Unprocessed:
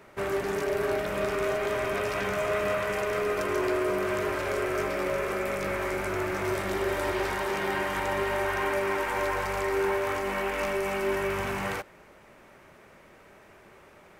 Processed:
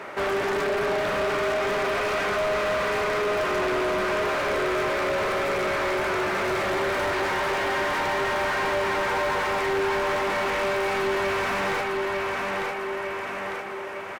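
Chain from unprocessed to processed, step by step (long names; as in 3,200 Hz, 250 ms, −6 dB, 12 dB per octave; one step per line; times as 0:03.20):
repeating echo 901 ms, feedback 44%, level −9 dB
mid-hump overdrive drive 29 dB, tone 2,100 Hz, clips at −15 dBFS
level −3 dB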